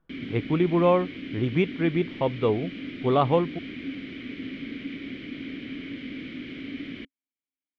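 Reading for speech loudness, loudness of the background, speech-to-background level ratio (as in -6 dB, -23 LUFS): -25.5 LUFS, -36.5 LUFS, 11.0 dB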